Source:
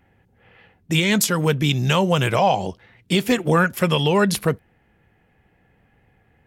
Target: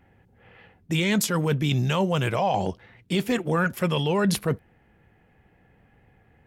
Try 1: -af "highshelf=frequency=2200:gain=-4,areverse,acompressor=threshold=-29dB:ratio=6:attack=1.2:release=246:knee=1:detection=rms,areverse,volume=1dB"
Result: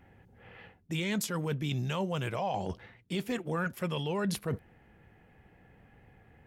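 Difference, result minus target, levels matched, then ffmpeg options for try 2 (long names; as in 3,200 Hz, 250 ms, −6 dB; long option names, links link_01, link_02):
downward compressor: peak gain reduction +9 dB
-af "highshelf=frequency=2200:gain=-4,areverse,acompressor=threshold=-18dB:ratio=6:attack=1.2:release=246:knee=1:detection=rms,areverse,volume=1dB"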